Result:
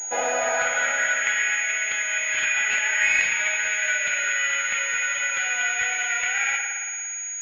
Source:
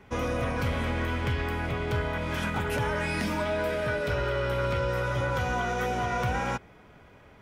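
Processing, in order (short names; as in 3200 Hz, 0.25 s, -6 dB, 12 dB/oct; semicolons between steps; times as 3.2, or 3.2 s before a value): high-pass sweep 820 Hz -> 2100 Hz, 0.25–1.49; Butterworth band-stop 1100 Hz, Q 2.4; spring tank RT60 2.1 s, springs 56 ms, chirp 80 ms, DRR 1.5 dB; pulse-width modulation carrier 6700 Hz; gain +8 dB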